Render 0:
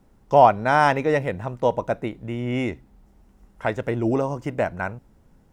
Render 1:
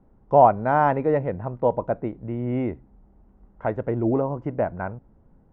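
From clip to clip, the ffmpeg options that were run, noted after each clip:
-af "lowpass=1100"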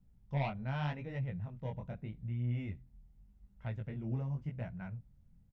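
-af "asoftclip=type=tanh:threshold=0.501,flanger=delay=16:depth=7.5:speed=0.84,firequalizer=gain_entry='entry(160,0);entry(310,-19);entry(1100,-17);entry(2200,-1);entry(3500,6)':delay=0.05:min_phase=1,volume=0.708"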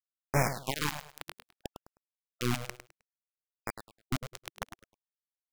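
-filter_complex "[0:a]acrusher=bits=4:mix=0:aa=0.000001,asplit=2[s0][s1];[s1]aecho=0:1:104|208|312:0.316|0.0791|0.0198[s2];[s0][s2]amix=inputs=2:normalize=0,afftfilt=real='re*(1-between(b*sr/1024,210*pow(3600/210,0.5+0.5*sin(2*PI*0.62*pts/sr))/1.41,210*pow(3600/210,0.5+0.5*sin(2*PI*0.62*pts/sr))*1.41))':imag='im*(1-between(b*sr/1024,210*pow(3600/210,0.5+0.5*sin(2*PI*0.62*pts/sr))/1.41,210*pow(3600/210,0.5+0.5*sin(2*PI*0.62*pts/sr))*1.41))':win_size=1024:overlap=0.75,volume=1.88"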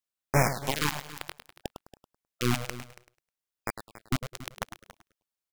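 -af "aecho=1:1:280:0.15,volume=1.58"

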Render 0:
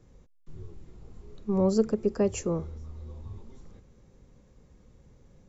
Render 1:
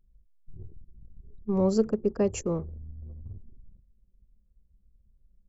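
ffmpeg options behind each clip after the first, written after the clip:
-af "anlmdn=0.398"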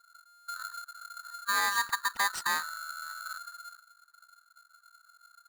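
-af "alimiter=limit=0.1:level=0:latency=1:release=286,aeval=exprs='val(0)*sgn(sin(2*PI*1400*n/s))':c=same"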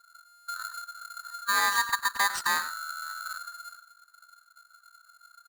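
-af "aecho=1:1:99:0.211,volume=1.41"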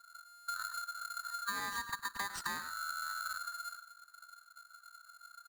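-filter_complex "[0:a]acrossover=split=300[s0][s1];[s1]acompressor=threshold=0.0178:ratio=10[s2];[s0][s2]amix=inputs=2:normalize=0"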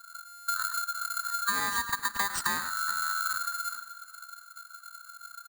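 -af "aexciter=amount=2:drive=0.9:freq=7500,aecho=1:1:419|838|1257:0.112|0.0494|0.0217,volume=2.66"

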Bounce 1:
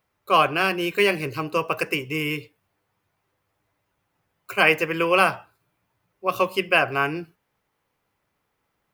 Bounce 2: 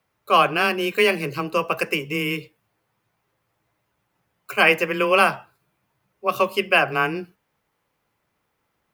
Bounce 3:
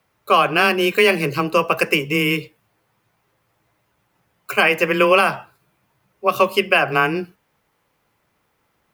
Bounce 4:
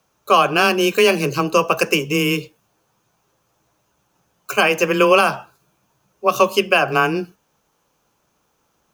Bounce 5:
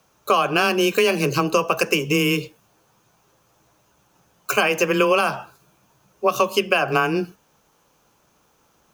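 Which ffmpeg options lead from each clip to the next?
-af "afreqshift=15,volume=1.19"
-af "alimiter=limit=0.335:level=0:latency=1:release=186,volume=2"
-af "equalizer=f=100:t=o:w=0.33:g=-9,equalizer=f=2000:t=o:w=0.33:g=-11,equalizer=f=6300:t=o:w=0.33:g=11,volume=1.19"
-af "acompressor=threshold=0.0794:ratio=3,volume=1.68"

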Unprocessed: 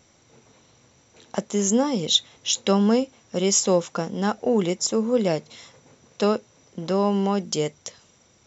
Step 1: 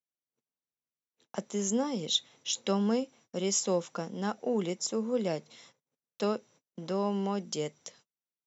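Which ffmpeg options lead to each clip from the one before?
-af "agate=range=0.0126:threshold=0.00398:ratio=16:detection=peak,highpass=f=130:w=0.5412,highpass=f=130:w=1.3066,volume=0.355"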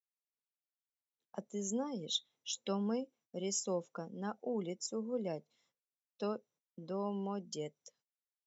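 -af "afftdn=nr=16:nf=-41,volume=0.422"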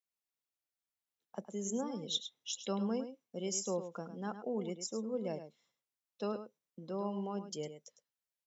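-filter_complex "[0:a]asplit=2[s0][s1];[s1]adelay=105,volume=0.316,highshelf=f=4000:g=-2.36[s2];[s0][s2]amix=inputs=2:normalize=0"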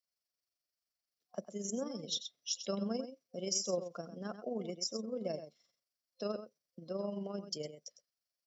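-af "tremolo=f=23:d=0.462,superequalizer=8b=1.78:9b=0.447:14b=3.16"

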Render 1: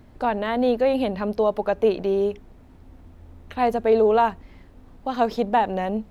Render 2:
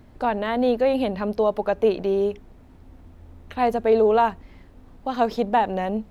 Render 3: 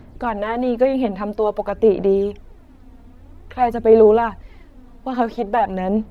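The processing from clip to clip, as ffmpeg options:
-af anull
-filter_complex "[0:a]acrossover=split=2600[s0][s1];[s1]acompressor=threshold=0.00316:ratio=4:attack=1:release=60[s2];[s0][s2]amix=inputs=2:normalize=0,aphaser=in_gain=1:out_gain=1:delay=4.3:decay=0.5:speed=0.5:type=sinusoidal,volume=1.19"

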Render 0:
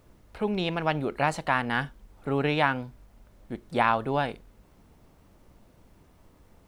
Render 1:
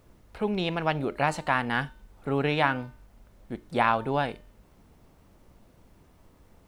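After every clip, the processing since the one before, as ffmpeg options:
-af "bandreject=f=301.5:t=h:w=4,bandreject=f=603:t=h:w=4,bandreject=f=904.5:t=h:w=4,bandreject=f=1206:t=h:w=4,bandreject=f=1507.5:t=h:w=4,bandreject=f=1809:t=h:w=4,bandreject=f=2110.5:t=h:w=4,bandreject=f=2412:t=h:w=4,bandreject=f=2713.5:t=h:w=4,bandreject=f=3015:t=h:w=4,bandreject=f=3316.5:t=h:w=4,bandreject=f=3618:t=h:w=4,bandreject=f=3919.5:t=h:w=4,bandreject=f=4221:t=h:w=4,bandreject=f=4522.5:t=h:w=4,bandreject=f=4824:t=h:w=4,bandreject=f=5125.5:t=h:w=4,bandreject=f=5427:t=h:w=4,bandreject=f=5728.5:t=h:w=4,bandreject=f=6030:t=h:w=4,bandreject=f=6331.5:t=h:w=4,bandreject=f=6633:t=h:w=4,bandreject=f=6934.5:t=h:w=4,bandreject=f=7236:t=h:w=4,bandreject=f=7537.5:t=h:w=4,bandreject=f=7839:t=h:w=4,bandreject=f=8140.5:t=h:w=4,bandreject=f=8442:t=h:w=4,bandreject=f=8743.5:t=h:w=4,bandreject=f=9045:t=h:w=4,bandreject=f=9346.5:t=h:w=4,bandreject=f=9648:t=h:w=4"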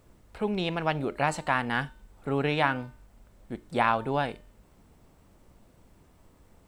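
-af "equalizer=f=7900:w=5.9:g=6.5,volume=0.891"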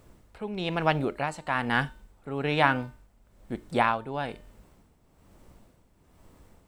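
-af "tremolo=f=1.1:d=0.68,volume=1.5"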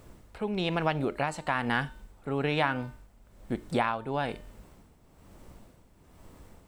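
-af "acompressor=threshold=0.0355:ratio=3,volume=1.5"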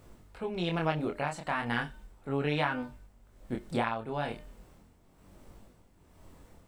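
-af "flanger=delay=20:depth=7.1:speed=0.36"

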